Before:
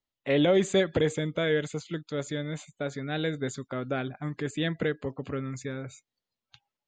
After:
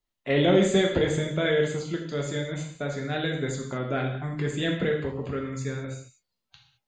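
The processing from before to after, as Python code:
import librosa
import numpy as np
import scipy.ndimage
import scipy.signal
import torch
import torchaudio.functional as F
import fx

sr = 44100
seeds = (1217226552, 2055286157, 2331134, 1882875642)

y = fx.low_shelf(x, sr, hz=81.0, db=7.0)
y = fx.rev_gated(y, sr, seeds[0], gate_ms=240, shape='falling', drr_db=-0.5)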